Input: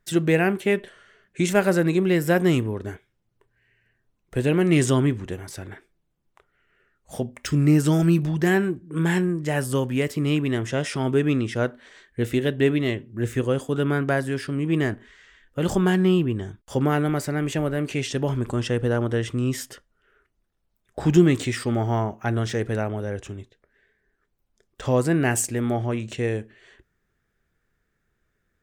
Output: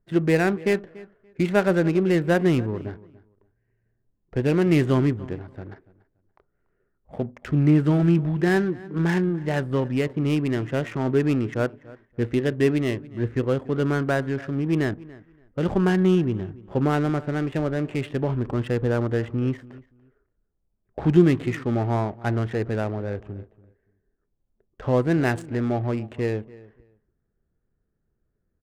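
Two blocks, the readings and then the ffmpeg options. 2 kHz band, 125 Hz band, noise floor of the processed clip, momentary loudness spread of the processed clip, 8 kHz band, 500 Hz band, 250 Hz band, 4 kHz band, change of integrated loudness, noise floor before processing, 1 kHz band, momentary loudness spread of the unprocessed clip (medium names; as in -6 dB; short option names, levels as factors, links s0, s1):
-2.0 dB, 0.0 dB, -75 dBFS, 13 LU, under -10 dB, 0.0 dB, 0.0 dB, -5.0 dB, -0.5 dB, -74 dBFS, -0.5 dB, 13 LU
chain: -filter_complex "[0:a]equalizer=f=5800:t=o:w=1.1:g=-12.5,adynamicsmooth=sensitivity=5:basefreq=770,asplit=2[s0][s1];[s1]adelay=287,lowpass=f=3000:p=1,volume=0.1,asplit=2[s2][s3];[s3]adelay=287,lowpass=f=3000:p=1,volume=0.2[s4];[s2][s4]amix=inputs=2:normalize=0[s5];[s0][s5]amix=inputs=2:normalize=0"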